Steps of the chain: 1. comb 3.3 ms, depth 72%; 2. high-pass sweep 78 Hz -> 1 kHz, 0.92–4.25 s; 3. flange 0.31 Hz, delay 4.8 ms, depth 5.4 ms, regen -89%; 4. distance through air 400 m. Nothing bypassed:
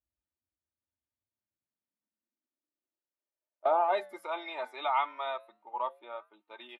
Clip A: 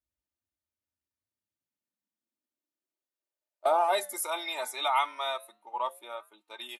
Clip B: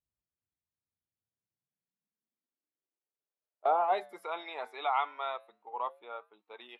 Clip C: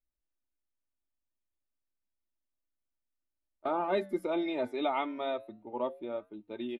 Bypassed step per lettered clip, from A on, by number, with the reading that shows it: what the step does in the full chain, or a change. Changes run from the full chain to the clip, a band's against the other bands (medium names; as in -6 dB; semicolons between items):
4, 4 kHz band +8.5 dB; 1, 1 kHz band +2.0 dB; 2, 250 Hz band +18.5 dB